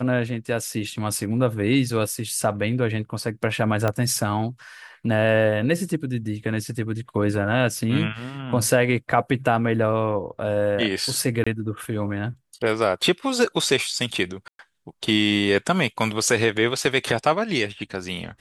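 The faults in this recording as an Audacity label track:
3.880000	3.880000	pop -10 dBFS
11.440000	11.460000	gap 25 ms
14.480000	14.590000	gap 0.112 s

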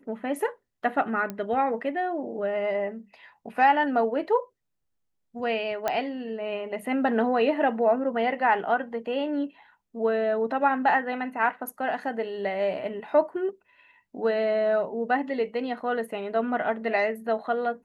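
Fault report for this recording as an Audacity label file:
1.300000	1.300000	pop -18 dBFS
5.880000	5.880000	pop -12 dBFS

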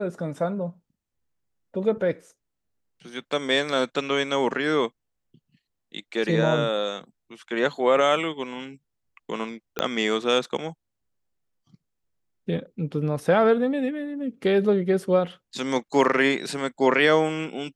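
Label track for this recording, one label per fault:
9.790000	9.790000	pop -10 dBFS

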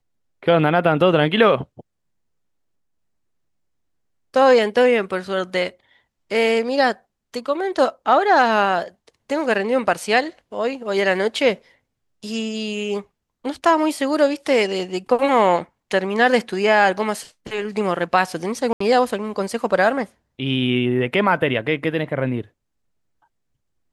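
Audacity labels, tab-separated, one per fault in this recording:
18.730000	18.800000	gap 74 ms

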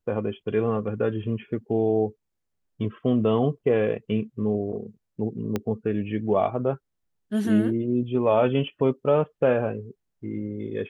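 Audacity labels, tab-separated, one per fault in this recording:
5.560000	5.560000	pop -13 dBFS

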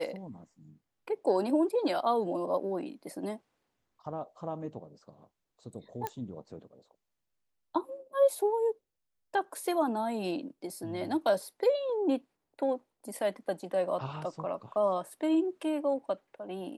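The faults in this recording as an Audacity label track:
6.070000	6.070000	pop -19 dBFS

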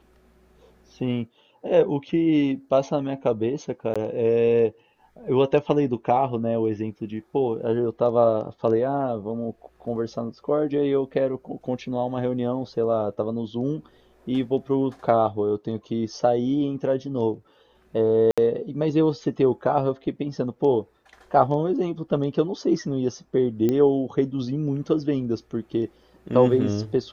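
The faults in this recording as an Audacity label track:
3.940000	3.960000	gap 16 ms
18.310000	18.380000	gap 66 ms
23.690000	23.690000	pop -12 dBFS

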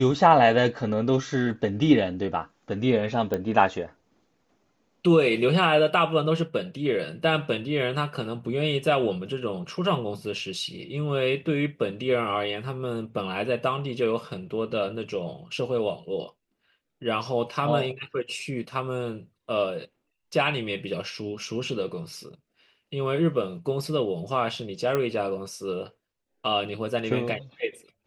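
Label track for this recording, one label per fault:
3.340000	3.340000	pop -15 dBFS
24.950000	24.950000	pop -13 dBFS

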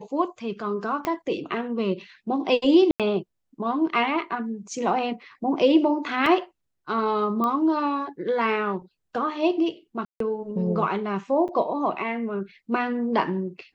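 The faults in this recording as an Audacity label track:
1.050000	1.050000	pop -13 dBFS
2.910000	3.000000	gap 87 ms
6.260000	6.260000	gap 2.7 ms
7.440000	7.440000	pop -15 dBFS
10.050000	10.200000	gap 0.153 s
11.480000	11.490000	gap 7.4 ms

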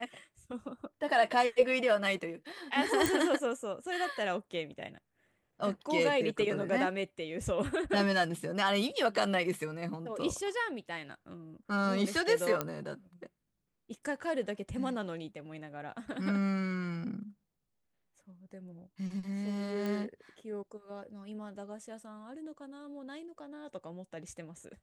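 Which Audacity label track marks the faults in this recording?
3.060000	3.060000	pop
12.610000	12.610000	pop -16 dBFS
19.860000	19.860000	pop -24 dBFS

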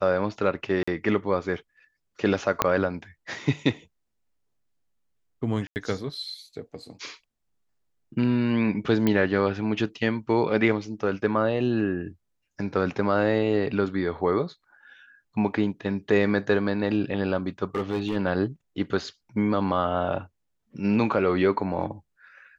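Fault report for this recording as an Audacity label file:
0.830000	0.880000	gap 45 ms
2.620000	2.620000	pop -5 dBFS
5.670000	5.760000	gap 89 ms
9.070000	9.070000	pop -11 dBFS
17.750000	18.160000	clipped -21.5 dBFS

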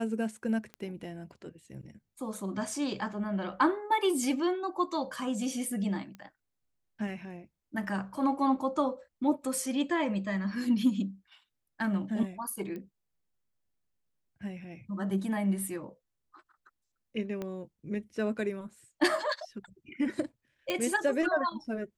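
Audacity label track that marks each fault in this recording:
0.740000	0.740000	pop -28 dBFS
6.150000	6.150000	pop -32 dBFS
12.760000	12.760000	pop -29 dBFS
17.420000	17.420000	pop -23 dBFS
20.700000	20.700000	pop -16 dBFS

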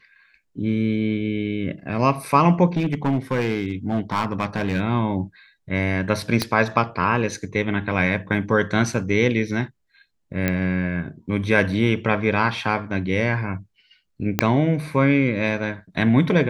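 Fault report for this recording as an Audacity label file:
2.770000	4.800000	clipped -16 dBFS
6.420000	6.420000	pop -7 dBFS
10.480000	10.480000	pop -8 dBFS
14.390000	14.390000	pop -2 dBFS

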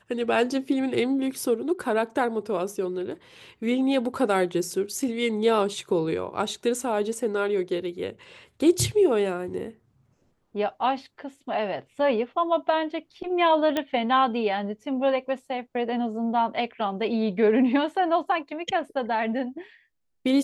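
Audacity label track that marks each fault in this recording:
13.770000	13.770000	pop -12 dBFS

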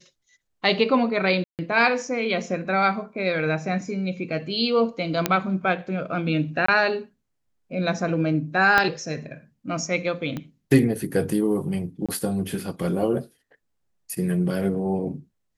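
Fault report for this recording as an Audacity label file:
1.440000	1.590000	gap 0.148 s
5.260000	5.260000	pop -4 dBFS
6.660000	6.680000	gap 24 ms
8.780000	8.780000	pop -6 dBFS
10.370000	10.370000	pop -18 dBFS
12.060000	12.090000	gap 26 ms

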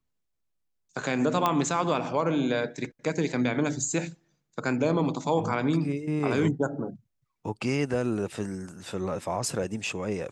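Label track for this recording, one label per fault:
1.460000	1.460000	pop -10 dBFS

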